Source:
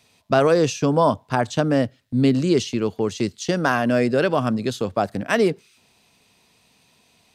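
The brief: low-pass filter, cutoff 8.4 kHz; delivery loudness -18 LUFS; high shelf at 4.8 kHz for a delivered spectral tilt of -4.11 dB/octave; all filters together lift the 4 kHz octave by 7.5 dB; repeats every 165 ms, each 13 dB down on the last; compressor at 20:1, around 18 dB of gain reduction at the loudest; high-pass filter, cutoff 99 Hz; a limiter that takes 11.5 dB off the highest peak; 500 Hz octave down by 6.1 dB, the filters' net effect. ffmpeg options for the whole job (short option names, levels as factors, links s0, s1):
-af "highpass=99,lowpass=8400,equalizer=f=500:t=o:g=-8,equalizer=f=4000:t=o:g=6.5,highshelf=f=4800:g=7,acompressor=threshold=0.0224:ratio=20,alimiter=level_in=1.68:limit=0.0631:level=0:latency=1,volume=0.596,aecho=1:1:165|330|495:0.224|0.0493|0.0108,volume=11.9"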